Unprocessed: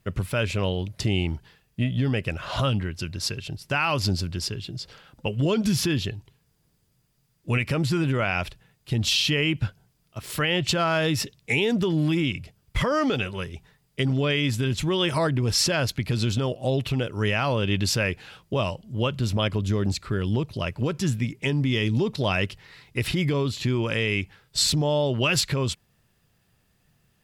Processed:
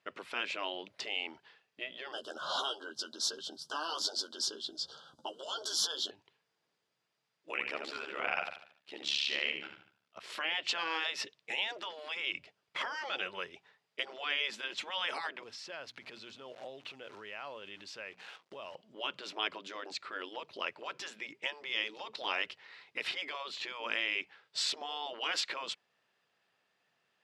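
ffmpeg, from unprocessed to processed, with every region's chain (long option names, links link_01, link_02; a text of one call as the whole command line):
ffmpeg -i in.wav -filter_complex "[0:a]asettb=1/sr,asplit=3[link_01][link_02][link_03];[link_01]atrim=end=2.124[link_04];[link_02]atrim=start=2.12:end=6.11,asetpts=PTS-STARTPTS,afade=type=in:duration=0.004:curve=qsin,afade=type=out:start_time=3.986:duration=0.004:curve=qsin,asuperstop=centerf=2200:order=12:qfactor=1.5,bass=frequency=250:gain=13,treble=frequency=4000:gain=11,asplit=2[link_05][link_06];[link_06]adelay=13,volume=-5.5dB[link_07];[link_05][link_07]amix=inputs=2:normalize=0,atrim=end_sample=175959[link_08];[link_03]atrim=start=6.106[link_09];[link_04][link_08]acrossfade=duration=0.004:curve1=hsin:curve2=qsin[link_10];[link_10][link_09]acrossfade=duration=0.004:curve1=qsin:curve2=hsin,asettb=1/sr,asplit=3[link_11][link_12][link_13];[link_11]atrim=end=7.514[link_14];[link_12]atrim=start=7.51:end=10.21,asetpts=PTS-STARTPTS,afade=type=in:duration=0.004:curve=qsin,afade=type=out:start_time=2.696:duration=0.004:curve=qsin,aecho=1:1:76|152|228|304|380:0.473|0.189|0.0757|0.0303|0.0121,atrim=end_sample=119070,tremolo=f=71:d=0.919[link_15];[link_13]atrim=start=10.206[link_16];[link_14][link_15]acrossfade=duration=0.004:curve1=hsin:curve2=qsin[link_17];[link_17][link_16]acrossfade=duration=0.004:curve1=qsin:curve2=hsin,asettb=1/sr,asplit=3[link_18][link_19][link_20];[link_18]atrim=end=15.434[link_21];[link_19]atrim=start=15.43:end=18.75,asetpts=PTS-STARTPTS,afade=type=in:duration=0.004:curve=qsin,afade=type=out:start_time=3.316:duration=0.004:curve=qsin,acrusher=bits=8:dc=4:mix=0:aa=0.000001,bandreject=frequency=60:width_type=h:width=6,bandreject=frequency=120:width_type=h:width=6,bandreject=frequency=180:width_type=h:width=6,bandreject=frequency=240:width_type=h:width=6,bandreject=frequency=300:width_type=h:width=6,acompressor=threshold=-33dB:ratio=20:attack=3.2:release=140:knee=1:detection=peak[link_22];[link_20]atrim=start=18.746[link_23];[link_21][link_22]acrossfade=duration=0.004:curve1=hsin:curve2=qsin[link_24];[link_24][link_23]acrossfade=duration=0.004:curve1=qsin:curve2=hsin,lowpass=4100,afftfilt=real='re*lt(hypot(re,im),0.2)':imag='im*lt(hypot(re,im),0.2)':win_size=1024:overlap=0.75,highpass=530,volume=-3.5dB" out.wav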